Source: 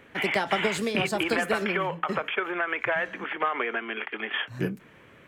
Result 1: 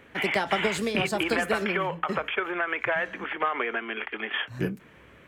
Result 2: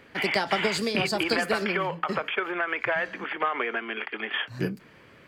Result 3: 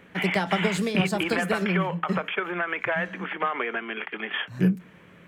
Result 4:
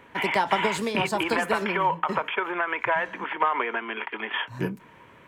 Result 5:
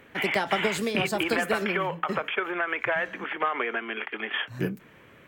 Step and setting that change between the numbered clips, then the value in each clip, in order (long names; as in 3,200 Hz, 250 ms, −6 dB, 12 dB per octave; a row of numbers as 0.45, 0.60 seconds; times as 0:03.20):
parametric band, centre frequency: 63, 4,700, 180, 960, 16,000 Hertz